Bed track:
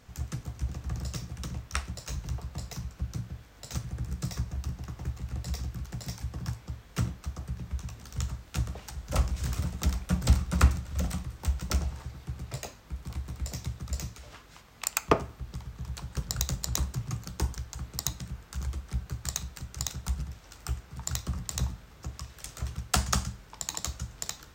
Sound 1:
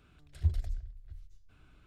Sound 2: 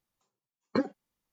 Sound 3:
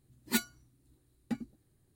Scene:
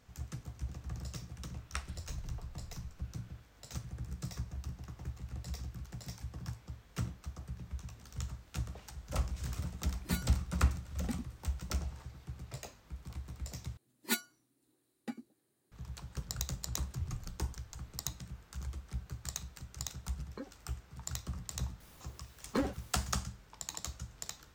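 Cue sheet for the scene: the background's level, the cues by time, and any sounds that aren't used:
bed track -7.5 dB
1.54 add 1 -2.5 dB + compressor, threshold -40 dBFS
9.78 add 3 -0.5 dB + limiter -26.5 dBFS
13.77 replace with 3 -1.5 dB + HPF 280 Hz
16.56 add 1 -12 dB
19.62 add 2 -17.5 dB
21.8 add 2 -8.5 dB + power-law curve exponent 0.5

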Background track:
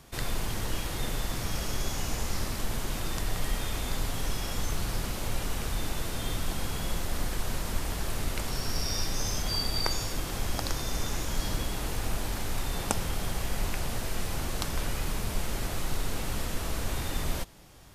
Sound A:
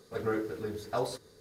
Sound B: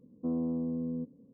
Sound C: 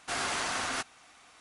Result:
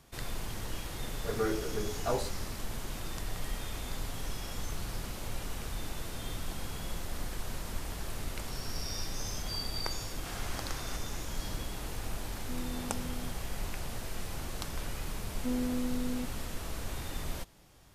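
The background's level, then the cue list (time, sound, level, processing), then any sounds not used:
background track -6.5 dB
1.13 add A -0.5 dB
10.15 add C -13 dB
12.25 add B -9.5 dB
15.21 add B -1 dB + robotiser 249 Hz

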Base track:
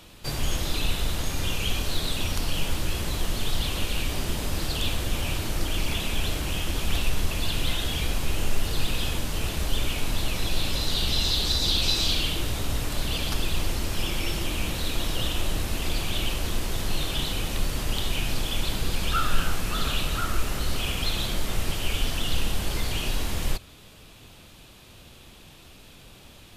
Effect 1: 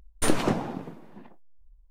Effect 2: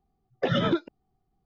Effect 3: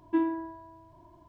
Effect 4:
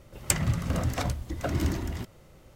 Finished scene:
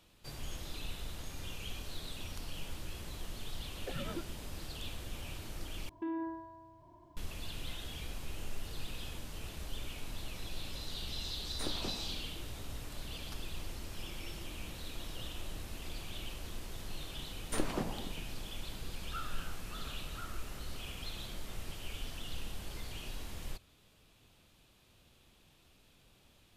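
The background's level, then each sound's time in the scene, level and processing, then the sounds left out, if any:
base track -16 dB
3.44 add 2 -17.5 dB
5.89 replace with 3 -3.5 dB + limiter -27.5 dBFS
11.37 add 1 -17.5 dB
17.3 add 1 -11.5 dB
not used: 4

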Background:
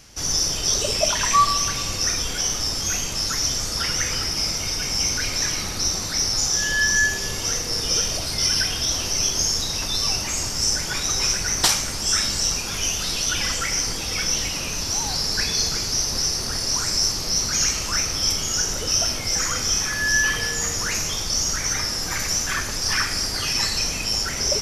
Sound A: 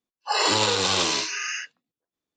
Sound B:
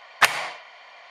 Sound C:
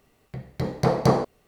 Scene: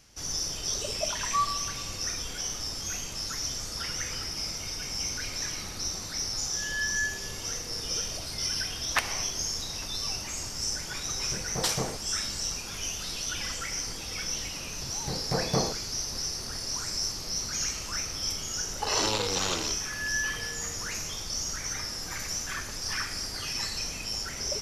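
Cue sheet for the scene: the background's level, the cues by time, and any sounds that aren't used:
background -10 dB
8.74 add B -10 dB
10.72 add C -13.5 dB
14.48 add C -8.5 dB
18.52 add A -5 dB + Wiener smoothing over 41 samples

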